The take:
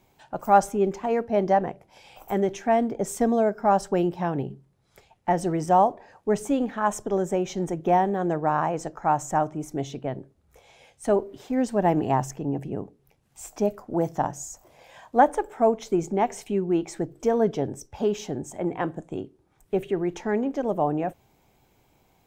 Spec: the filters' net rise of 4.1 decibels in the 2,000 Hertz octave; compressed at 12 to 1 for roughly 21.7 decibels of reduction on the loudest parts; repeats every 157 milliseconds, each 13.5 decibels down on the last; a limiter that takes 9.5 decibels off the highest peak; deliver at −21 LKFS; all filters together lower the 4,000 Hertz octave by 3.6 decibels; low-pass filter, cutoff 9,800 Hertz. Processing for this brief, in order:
low-pass filter 9,800 Hz
parametric band 2,000 Hz +7 dB
parametric band 4,000 Hz −8.5 dB
downward compressor 12 to 1, threshold −33 dBFS
brickwall limiter −29 dBFS
repeating echo 157 ms, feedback 21%, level −13.5 dB
level +19.5 dB

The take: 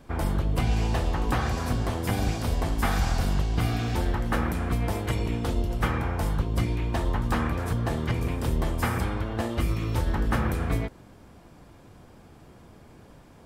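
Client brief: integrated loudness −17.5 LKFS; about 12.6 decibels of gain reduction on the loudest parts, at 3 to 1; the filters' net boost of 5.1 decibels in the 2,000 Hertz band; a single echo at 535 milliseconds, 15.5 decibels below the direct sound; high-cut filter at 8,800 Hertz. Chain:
low-pass filter 8,800 Hz
parametric band 2,000 Hz +6.5 dB
downward compressor 3 to 1, threshold −38 dBFS
single-tap delay 535 ms −15.5 dB
level +21 dB

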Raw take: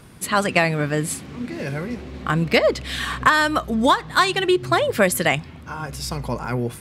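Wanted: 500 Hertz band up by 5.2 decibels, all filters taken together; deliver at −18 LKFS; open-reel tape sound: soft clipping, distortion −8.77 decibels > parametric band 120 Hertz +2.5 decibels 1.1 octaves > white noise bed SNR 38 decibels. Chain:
parametric band 500 Hz +6.5 dB
soft clipping −15 dBFS
parametric band 120 Hz +2.5 dB 1.1 octaves
white noise bed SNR 38 dB
level +4.5 dB

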